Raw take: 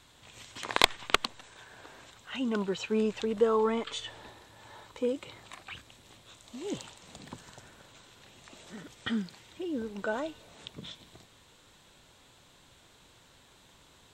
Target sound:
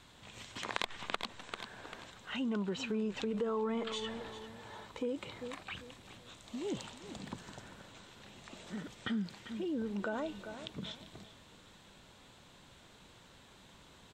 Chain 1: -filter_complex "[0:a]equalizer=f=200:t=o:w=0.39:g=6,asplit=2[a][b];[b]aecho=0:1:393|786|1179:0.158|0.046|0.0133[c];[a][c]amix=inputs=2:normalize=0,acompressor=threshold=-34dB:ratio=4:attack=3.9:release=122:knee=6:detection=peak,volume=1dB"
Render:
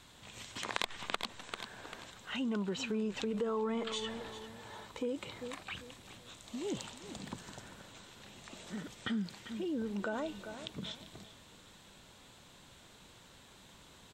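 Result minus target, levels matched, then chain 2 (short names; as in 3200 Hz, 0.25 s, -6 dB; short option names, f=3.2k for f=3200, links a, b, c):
8000 Hz band +3.5 dB
-filter_complex "[0:a]equalizer=f=200:t=o:w=0.39:g=6,asplit=2[a][b];[b]aecho=0:1:393|786|1179:0.158|0.046|0.0133[c];[a][c]amix=inputs=2:normalize=0,acompressor=threshold=-34dB:ratio=4:attack=3.9:release=122:knee=6:detection=peak,highshelf=f=6.3k:g=-7,volume=1dB"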